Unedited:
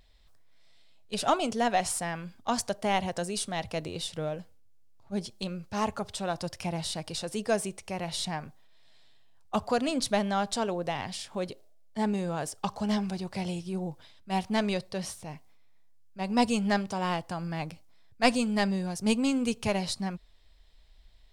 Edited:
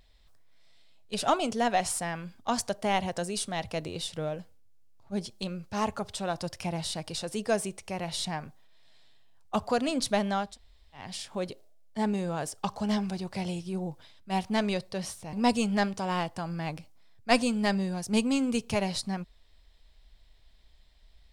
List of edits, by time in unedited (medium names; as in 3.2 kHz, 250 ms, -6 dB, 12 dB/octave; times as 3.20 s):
10.46–11.04 s: room tone, crossfade 0.24 s
15.33–16.26 s: delete